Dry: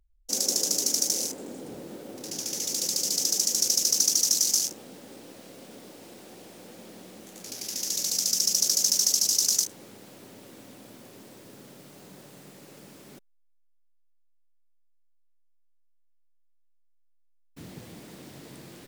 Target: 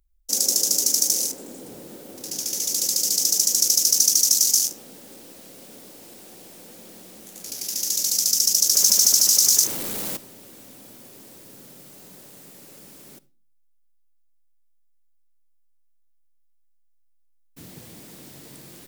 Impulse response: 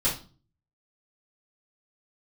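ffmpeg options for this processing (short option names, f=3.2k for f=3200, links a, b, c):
-filter_complex "[0:a]asettb=1/sr,asplit=3[a][b][c];[a]atrim=end=8.754[d];[b]atrim=start=8.75:end=10.17,asetpts=PTS-STARTPTS,afade=t=in:d=0.004:c=qsin,afade=t=out:st=1.416:d=0.004:c=qsin,aeval=exprs='val(0)+0.5*0.0355*sgn(val(0))':c=same[e];[c]atrim=start=10.166[f];[d][e]acrossfade=d=0.004:c1=hsin:c2=qsin[g];[g][f]acrossfade=d=0.004:c1=qsin:c2=hsin,asplit=2[h][i];[1:a]atrim=start_sample=2205,adelay=43[j];[i][j]afir=irnorm=-1:irlink=0,volume=-29.5dB[k];[h][k]amix=inputs=2:normalize=0,crystalizer=i=1.5:c=0,volume=-1dB"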